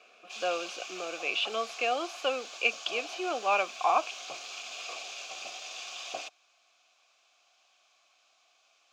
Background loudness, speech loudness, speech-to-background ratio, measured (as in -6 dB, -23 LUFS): -40.5 LUFS, -31.0 LUFS, 9.5 dB